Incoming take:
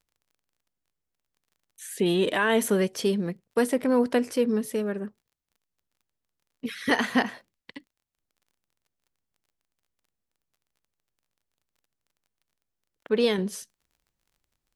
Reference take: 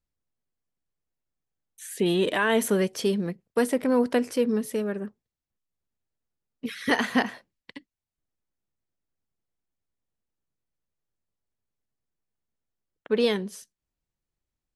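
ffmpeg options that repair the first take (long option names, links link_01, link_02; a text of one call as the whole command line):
ffmpeg -i in.wav -af "adeclick=threshold=4,asetnsamples=nb_out_samples=441:pad=0,asendcmd='13.38 volume volume -5dB',volume=0dB" out.wav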